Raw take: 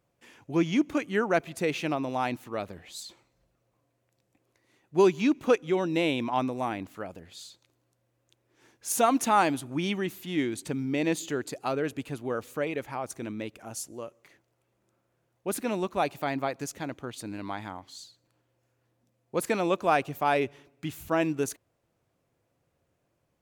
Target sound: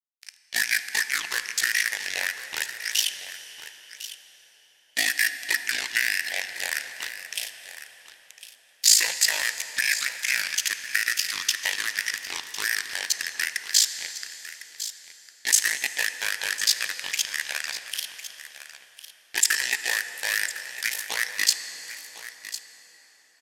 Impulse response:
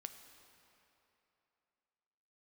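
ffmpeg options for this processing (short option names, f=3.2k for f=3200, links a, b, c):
-filter_complex "[0:a]highpass=1.2k,equalizer=f=2.4k:t=o:w=0.62:g=13,acompressor=threshold=-33dB:ratio=6,acrusher=bits=5:mix=0:aa=0.5,aexciter=amount=9.2:drive=3.1:freq=2.4k,asetrate=32097,aresample=44100,atempo=1.37395,aeval=exprs='val(0)*sin(2*PI*27*n/s)':c=same,aecho=1:1:1054:0.2,asplit=2[a][b];[1:a]atrim=start_sample=2205,asetrate=27342,aresample=44100[c];[b][c]afir=irnorm=-1:irlink=0,volume=11dB[d];[a][d]amix=inputs=2:normalize=0,adynamicequalizer=threshold=0.0447:dfrequency=7100:dqfactor=0.7:tfrequency=7100:tqfactor=0.7:attack=5:release=100:ratio=0.375:range=2:mode=cutabove:tftype=highshelf,volume=-10dB"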